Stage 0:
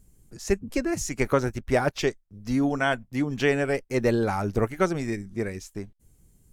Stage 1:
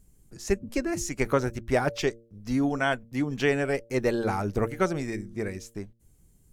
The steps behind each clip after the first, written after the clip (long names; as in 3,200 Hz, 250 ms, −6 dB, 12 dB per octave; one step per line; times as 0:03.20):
hum removal 115.2 Hz, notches 5
level −1.5 dB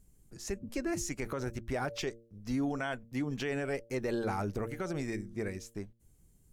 brickwall limiter −21 dBFS, peak gain reduction 11.5 dB
level −4 dB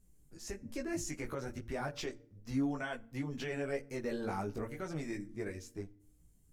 multi-voice chorus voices 4, 0.54 Hz, delay 17 ms, depth 4.9 ms
feedback delay network reverb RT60 0.59 s, low-frequency decay 1.6×, high-frequency decay 0.75×, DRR 18 dB
level −1 dB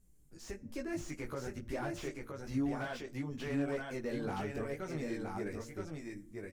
single-tap delay 970 ms −4 dB
slew-rate limiting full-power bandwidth 20 Hz
level −1 dB